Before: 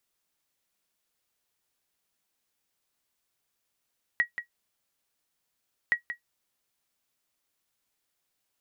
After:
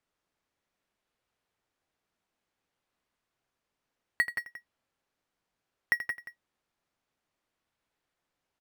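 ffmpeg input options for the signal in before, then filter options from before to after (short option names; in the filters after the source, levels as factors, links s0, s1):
-f lavfi -i "aevalsrc='0.188*(sin(2*PI*1910*mod(t,1.72))*exp(-6.91*mod(t,1.72)/0.11)+0.299*sin(2*PI*1910*max(mod(t,1.72)-0.18,0))*exp(-6.91*max(mod(t,1.72)-0.18,0)/0.11))':d=3.44:s=44100"
-filter_complex "[0:a]aemphasis=mode=reproduction:type=75fm,asplit=2[s0][s1];[s1]acrusher=samples=8:mix=1:aa=0.000001:lfo=1:lforange=4.8:lforate=0.61,volume=0.335[s2];[s0][s2]amix=inputs=2:normalize=0,aecho=1:1:81.63|172:0.251|0.355"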